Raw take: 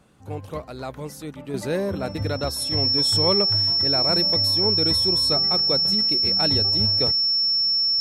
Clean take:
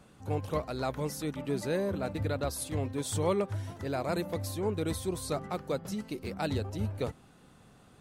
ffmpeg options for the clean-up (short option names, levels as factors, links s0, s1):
-af "bandreject=f=5400:w=30,asetnsamples=n=441:p=0,asendcmd='1.54 volume volume -6dB',volume=1"